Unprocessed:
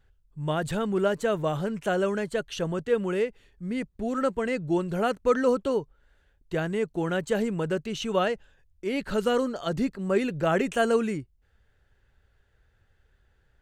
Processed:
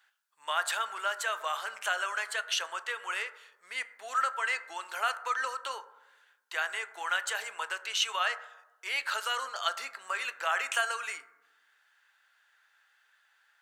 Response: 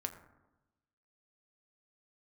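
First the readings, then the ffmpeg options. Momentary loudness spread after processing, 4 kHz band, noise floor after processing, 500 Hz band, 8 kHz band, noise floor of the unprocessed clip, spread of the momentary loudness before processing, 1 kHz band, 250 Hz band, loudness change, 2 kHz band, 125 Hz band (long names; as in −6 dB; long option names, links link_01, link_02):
10 LU, +5.5 dB, −69 dBFS, −18.0 dB, +5.5 dB, −67 dBFS, 7 LU, 0.0 dB, below −35 dB, −5.0 dB, +4.0 dB, below −40 dB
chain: -filter_complex "[0:a]acompressor=threshold=-25dB:ratio=6,highpass=frequency=1000:width=0.5412,highpass=frequency=1000:width=1.3066,asplit=2[link_01][link_02];[1:a]atrim=start_sample=2205[link_03];[link_02][link_03]afir=irnorm=-1:irlink=0,volume=4dB[link_04];[link_01][link_04]amix=inputs=2:normalize=0"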